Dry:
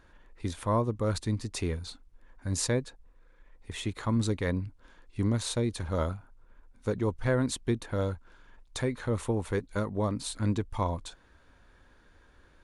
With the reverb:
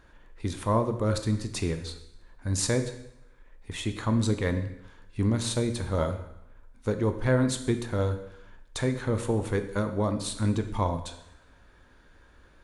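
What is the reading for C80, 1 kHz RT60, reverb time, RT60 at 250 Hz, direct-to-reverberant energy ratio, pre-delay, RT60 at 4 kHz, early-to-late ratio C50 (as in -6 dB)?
13.0 dB, 0.90 s, 0.85 s, 0.80 s, 7.5 dB, 7 ms, 0.80 s, 10.5 dB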